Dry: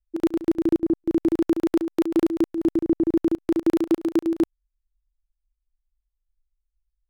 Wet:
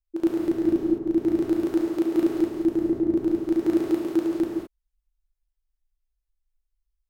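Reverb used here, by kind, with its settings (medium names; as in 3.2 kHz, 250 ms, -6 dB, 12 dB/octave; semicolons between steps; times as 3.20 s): gated-style reverb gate 240 ms flat, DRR -2.5 dB; trim -5.5 dB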